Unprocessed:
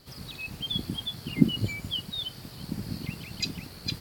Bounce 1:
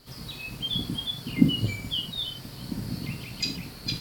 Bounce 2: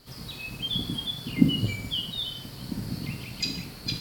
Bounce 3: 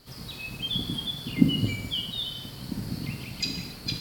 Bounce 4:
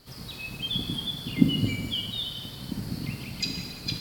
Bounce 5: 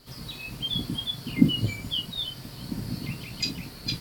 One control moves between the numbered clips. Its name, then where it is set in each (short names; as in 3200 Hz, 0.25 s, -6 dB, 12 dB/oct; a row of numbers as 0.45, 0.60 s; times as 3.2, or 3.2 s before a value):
non-linear reverb, gate: 140, 220, 330, 520, 80 ms